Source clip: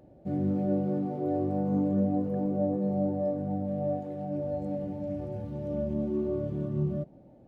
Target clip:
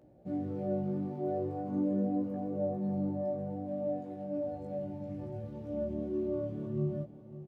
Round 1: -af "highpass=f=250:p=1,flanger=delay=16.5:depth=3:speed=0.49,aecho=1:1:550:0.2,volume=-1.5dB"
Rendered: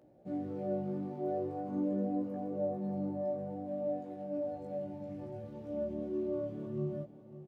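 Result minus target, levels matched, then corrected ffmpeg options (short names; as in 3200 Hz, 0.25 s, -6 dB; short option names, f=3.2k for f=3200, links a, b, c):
125 Hz band -3.0 dB
-af "highpass=f=70:p=1,flanger=delay=16.5:depth=3:speed=0.49,aecho=1:1:550:0.2,volume=-1.5dB"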